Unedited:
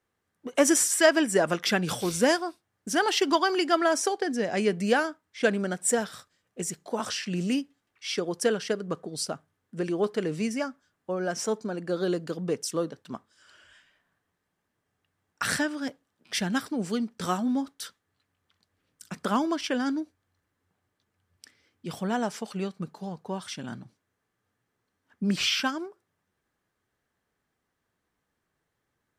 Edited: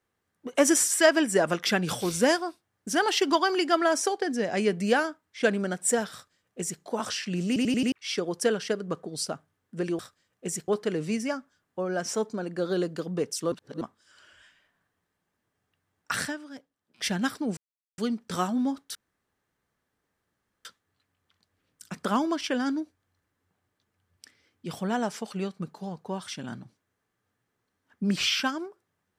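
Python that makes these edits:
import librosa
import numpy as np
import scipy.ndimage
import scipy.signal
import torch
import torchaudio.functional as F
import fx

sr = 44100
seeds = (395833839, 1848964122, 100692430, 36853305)

y = fx.edit(x, sr, fx.duplicate(start_s=6.13, length_s=0.69, to_s=9.99),
    fx.stutter_over(start_s=7.47, slice_s=0.09, count=5),
    fx.reverse_span(start_s=12.83, length_s=0.29),
    fx.fade_down_up(start_s=15.42, length_s=0.96, db=-11.0, fade_s=0.41, curve='qua'),
    fx.insert_silence(at_s=16.88, length_s=0.41),
    fx.insert_room_tone(at_s=17.85, length_s=1.7), tone=tone)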